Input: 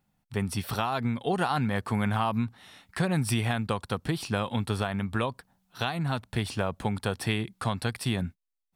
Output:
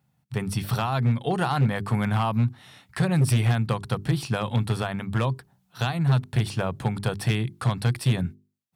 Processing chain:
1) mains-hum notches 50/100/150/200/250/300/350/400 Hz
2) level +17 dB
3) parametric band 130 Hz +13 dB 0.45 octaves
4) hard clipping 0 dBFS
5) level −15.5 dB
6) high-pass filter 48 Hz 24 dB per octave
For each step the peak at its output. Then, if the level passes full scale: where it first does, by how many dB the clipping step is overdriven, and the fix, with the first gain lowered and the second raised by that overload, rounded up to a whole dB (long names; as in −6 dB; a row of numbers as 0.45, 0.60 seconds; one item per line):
−14.0, +3.0, +7.0, 0.0, −15.5, −10.0 dBFS
step 2, 7.0 dB
step 2 +10 dB, step 5 −8.5 dB